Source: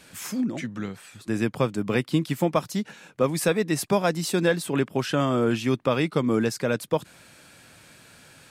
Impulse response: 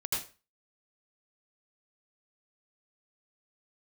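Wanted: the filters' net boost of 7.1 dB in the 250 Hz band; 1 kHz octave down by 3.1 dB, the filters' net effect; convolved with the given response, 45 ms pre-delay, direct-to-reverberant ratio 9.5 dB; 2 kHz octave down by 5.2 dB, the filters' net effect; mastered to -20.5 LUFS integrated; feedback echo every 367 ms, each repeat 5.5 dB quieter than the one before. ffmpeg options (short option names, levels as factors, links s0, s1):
-filter_complex "[0:a]equalizer=f=250:t=o:g=9,equalizer=f=1000:t=o:g=-3,equalizer=f=2000:t=o:g=-6,aecho=1:1:367|734|1101|1468|1835|2202|2569:0.531|0.281|0.149|0.079|0.0419|0.0222|0.0118,asplit=2[s0][s1];[1:a]atrim=start_sample=2205,adelay=45[s2];[s1][s2]afir=irnorm=-1:irlink=0,volume=0.188[s3];[s0][s3]amix=inputs=2:normalize=0,volume=0.944"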